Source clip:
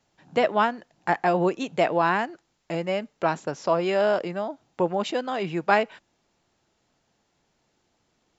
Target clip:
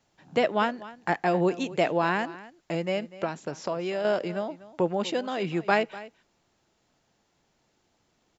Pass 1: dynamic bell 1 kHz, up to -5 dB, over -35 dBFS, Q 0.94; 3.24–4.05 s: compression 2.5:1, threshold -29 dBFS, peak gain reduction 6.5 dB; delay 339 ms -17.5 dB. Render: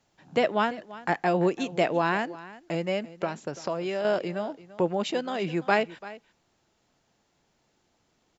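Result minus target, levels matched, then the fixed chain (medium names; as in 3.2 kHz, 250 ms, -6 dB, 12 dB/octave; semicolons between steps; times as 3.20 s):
echo 93 ms late
dynamic bell 1 kHz, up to -5 dB, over -35 dBFS, Q 0.94; 3.24–4.05 s: compression 2.5:1, threshold -29 dBFS, peak gain reduction 6.5 dB; delay 246 ms -17.5 dB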